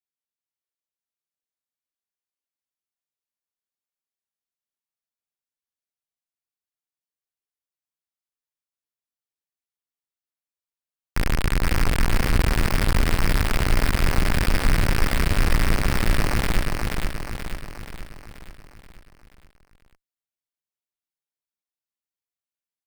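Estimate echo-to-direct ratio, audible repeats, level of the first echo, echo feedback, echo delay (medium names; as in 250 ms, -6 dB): -1.5 dB, 6, -3.0 dB, 53%, 480 ms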